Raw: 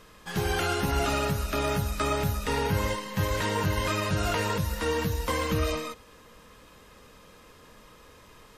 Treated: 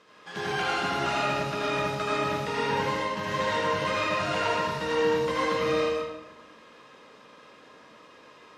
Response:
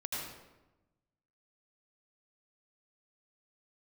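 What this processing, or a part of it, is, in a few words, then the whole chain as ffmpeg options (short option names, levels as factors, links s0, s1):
supermarket ceiling speaker: -filter_complex "[0:a]highpass=250,lowpass=5100[s0];[1:a]atrim=start_sample=2205[s1];[s0][s1]afir=irnorm=-1:irlink=0"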